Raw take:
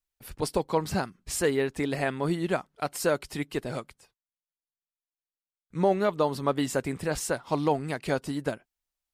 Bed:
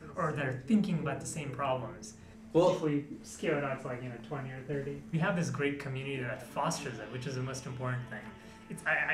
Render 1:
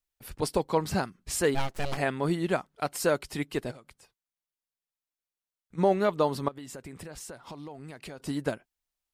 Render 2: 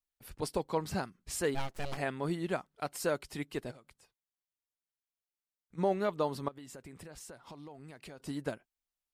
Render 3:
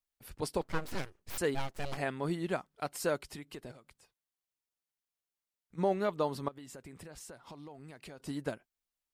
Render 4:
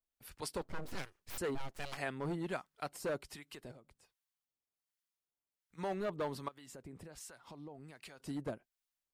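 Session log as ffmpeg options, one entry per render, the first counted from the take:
-filter_complex "[0:a]asplit=3[a][b][c];[a]afade=t=out:st=1.54:d=0.02[d];[b]aeval=exprs='abs(val(0))':c=same,afade=t=in:st=1.54:d=0.02,afade=t=out:st=1.96:d=0.02[e];[c]afade=t=in:st=1.96:d=0.02[f];[d][e][f]amix=inputs=3:normalize=0,asplit=3[g][h][i];[g]afade=t=out:st=3.7:d=0.02[j];[h]acompressor=threshold=-44dB:ratio=20:attack=3.2:release=140:knee=1:detection=peak,afade=t=in:st=3.7:d=0.02,afade=t=out:st=5.77:d=0.02[k];[i]afade=t=in:st=5.77:d=0.02[l];[j][k][l]amix=inputs=3:normalize=0,asettb=1/sr,asplit=3[m][n][o];[m]atrim=end=6.484[p];[n]atrim=start=6.48:end=8.2,asetpts=PTS-STARTPTS,afade=t=in:d=0.004:c=qsin,afade=t=out:st=1.716:d=0.004:c=qsin,acompressor=threshold=-39dB:ratio=8:attack=3.2:release=140:knee=1:detection=peak[q];[o]atrim=start=8.196[r];[p][q]acrossfade=d=0.004:c1=hsin:c2=qsin[s];[s][r]acrossfade=d=0.004:c1=qsin:c2=hsin"
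-af "volume=-6.5dB"
-filter_complex "[0:a]asettb=1/sr,asplit=3[a][b][c];[a]atrim=end=0.614[d];[b]atrim=start=0.61:end=1.38,asetpts=PTS-STARTPTS,afade=t=in:d=0.004:c=qsin,afade=t=out:st=0.766:d=0.004:c=qsin,aeval=exprs='abs(val(0))':c=same[e];[c]atrim=start=1.376[f];[d][e]acrossfade=d=0.004:c1=hsin:c2=qsin[g];[g][f]acrossfade=d=0.004:c1=qsin:c2=hsin,asettb=1/sr,asplit=3[h][i][j];[h]atrim=end=3.304[k];[i]atrim=start=3.3:end=3.71,asetpts=PTS-STARTPTS,afade=t=in:d=0.004:c=qsin,afade=t=out:st=0.406:d=0.004:c=qsin,acompressor=threshold=-40dB:ratio=12:attack=3.2:release=140:knee=1:detection=peak[l];[j]atrim=start=3.706[m];[k][l]acrossfade=d=0.004:c1=hsin:c2=qsin[n];[n][m]acrossfade=d=0.004:c1=qsin:c2=hsin"
-filter_complex "[0:a]acrossover=split=890[a][b];[a]aeval=exprs='val(0)*(1-0.7/2+0.7/2*cos(2*PI*1.3*n/s))':c=same[c];[b]aeval=exprs='val(0)*(1-0.7/2-0.7/2*cos(2*PI*1.3*n/s))':c=same[d];[c][d]amix=inputs=2:normalize=0,acrossover=split=960[e][f];[e]asoftclip=type=hard:threshold=-34.5dB[g];[g][f]amix=inputs=2:normalize=0"

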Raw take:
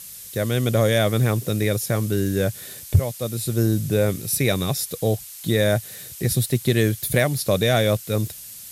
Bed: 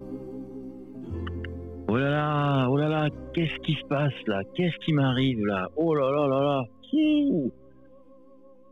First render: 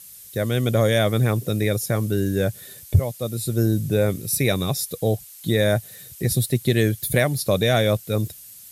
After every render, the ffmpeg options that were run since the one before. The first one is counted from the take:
-af "afftdn=nr=7:nf=-39"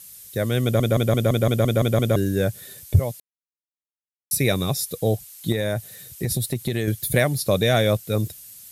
-filter_complex "[0:a]asettb=1/sr,asplit=3[a][b][c];[a]atrim=end=5.524[d];[b]atrim=start=5.52:end=6.88,asetpts=PTS-STARTPTS,afade=t=in:d=0.004:c=qsin,afade=t=out:st=1.356:d=0.004:c=qsin,acompressor=threshold=-19dB:ratio=6:attack=3.2:release=140:knee=1:detection=peak[e];[c]atrim=start=6.876[f];[d][e]acrossfade=d=0.004:c1=hsin:c2=qsin[g];[g][f]acrossfade=d=0.004:c1=qsin:c2=hsin,asplit=12[h][i][j][k][l][m][n][o][p][q][r][s];[h]atrim=end=0.802[t];[i]atrim=start=0.628:end=0.802[u];[j]atrim=start=0.628:end=0.802[v];[k]atrim=start=0.628:end=0.802[w];[l]atrim=start=0.628:end=0.802[x];[m]atrim=start=0.628:end=0.802[y];[n]atrim=start=0.628:end=0.802[z];[o]atrim=start=0.628:end=0.802[aa];[p]atrim=start=0.628:end=0.802[ab];[q]atrim=start=2.158:end=3.2,asetpts=PTS-STARTPTS,afade=t=out:st=1.038:d=0.004:c=hsin[ac];[r]atrim=start=3.2:end=4.31,asetpts=PTS-STARTPTS,volume=0[ad];[s]atrim=start=4.31,asetpts=PTS-STARTPTS,afade=t=in:d=0.004:c=hsin[ae];[t][u]acrossfade=d=0.004:c1=hsin:c2=hsin[af];[af][v]acrossfade=d=0.004:c1=hsin:c2=hsin[ag];[ag][w]acrossfade=d=0.004:c1=hsin:c2=hsin[ah];[ah][x]acrossfade=d=0.004:c1=hsin:c2=hsin[ai];[ai][y]acrossfade=d=0.004:c1=hsin:c2=hsin[aj];[aj][z]acrossfade=d=0.004:c1=hsin:c2=hsin[ak];[ak][aa]acrossfade=d=0.004:c1=hsin:c2=hsin[al];[al][ab]acrossfade=d=0.004:c1=hsin:c2=hsin[am];[ac][ad][ae]concat=n=3:v=0:a=1[an];[am][an]acrossfade=d=0.004:c1=hsin:c2=hsin"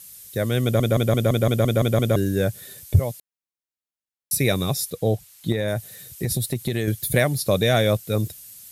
-filter_complex "[0:a]asettb=1/sr,asplit=3[a][b][c];[a]atrim=end=4.904[d];[b]atrim=start=4.9:end=5.68,asetpts=PTS-STARTPTS,afade=t=in:d=0.004:c=qsin,afade=t=out:st=0.776:d=0.004:c=qsin,highshelf=f=5.5k:g=-8.5[e];[c]atrim=start=5.676[f];[d][e]acrossfade=d=0.004:c1=hsin:c2=qsin[g];[g][f]acrossfade=d=0.004:c1=qsin:c2=hsin"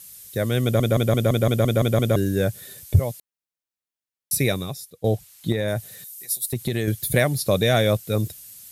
-filter_complex "[0:a]asettb=1/sr,asplit=3[a][b][c];[a]atrim=end=6.044[d];[b]atrim=start=6.04:end=6.53,asetpts=PTS-STARTPTS,afade=t=in:d=0.004:c=qsin,afade=t=out:st=0.486:d=0.004:c=qsin,aderivative[e];[c]atrim=start=6.526[f];[d][e]acrossfade=d=0.004:c1=hsin:c2=qsin[g];[g][f]acrossfade=d=0.004:c1=qsin:c2=hsin,asplit=2[h][i];[h]atrim=end=5.04,asetpts=PTS-STARTPTS,afade=t=out:st=4.43:d=0.61:c=qua:silence=0.149624[j];[i]atrim=start=5.04,asetpts=PTS-STARTPTS,afade=t=in:d=0.004:c=hsin:silence=0.149624[k];[j][k]concat=n=2:v=0:a=1"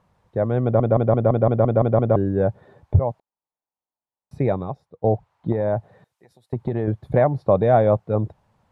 -af "lowpass=f=890:t=q:w=3.4"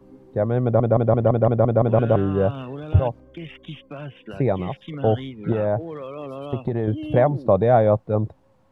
-filter_complex "[1:a]volume=-10dB[a];[0:a][a]amix=inputs=2:normalize=0"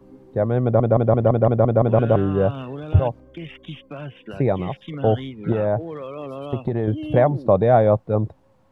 -af "volume=1dB"

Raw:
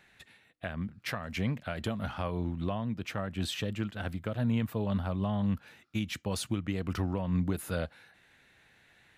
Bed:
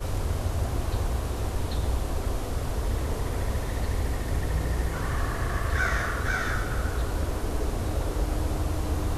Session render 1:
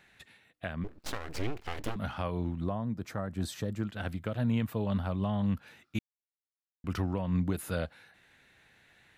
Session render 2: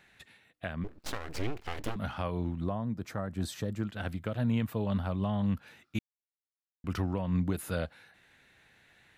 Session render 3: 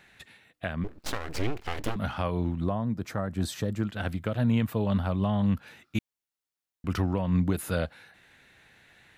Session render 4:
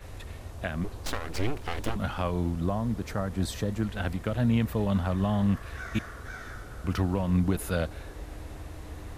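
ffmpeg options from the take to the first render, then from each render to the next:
-filter_complex "[0:a]asettb=1/sr,asplit=3[a][b][c];[a]atrim=end=0.844[d];[b]atrim=start=0.84:end=1.96,asetpts=PTS-STARTPTS,afade=t=in:d=0.004:c=qsin,afade=t=out:st=1.116:d=0.004:c=qsin,aeval=exprs='abs(val(0))':c=same[e];[c]atrim=start=1.956[f];[d][e]acrossfade=d=0.004:c1=hsin:c2=qsin[g];[g][f]acrossfade=d=0.004:c1=qsin:c2=hsin,asettb=1/sr,asplit=3[h][i][j];[h]atrim=end=2.604[k];[i]atrim=start=2.6:end=3.87,asetpts=PTS-STARTPTS,afade=t=in:d=0.004:c=qsin,afade=t=out:st=1.266:d=0.004:c=qsin,equalizer=f=2.8k:w=1.6:g=-14[l];[j]atrim=start=3.866[m];[k][l]acrossfade=d=0.004:c1=hsin:c2=qsin[n];[n][m]acrossfade=d=0.004:c1=qsin:c2=hsin,asplit=3[o][p][q];[o]atrim=end=5.99,asetpts=PTS-STARTPTS,afade=t=out:st=5.986:d=0.004:c=hsin[r];[p]atrim=start=5.99:end=6.84,asetpts=PTS-STARTPTS,volume=0[s];[q]atrim=start=6.84,asetpts=PTS-STARTPTS,afade=t=in:d=0.004:c=hsin[t];[r][s][t]concat=n=3:v=0:a=1"
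-af anull
-af "volume=4.5dB"
-filter_complex "[1:a]volume=-13.5dB[a];[0:a][a]amix=inputs=2:normalize=0"

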